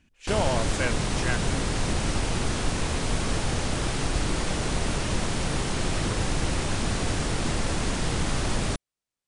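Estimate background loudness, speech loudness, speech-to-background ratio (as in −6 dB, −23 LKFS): −28.0 LKFS, −31.5 LKFS, −3.5 dB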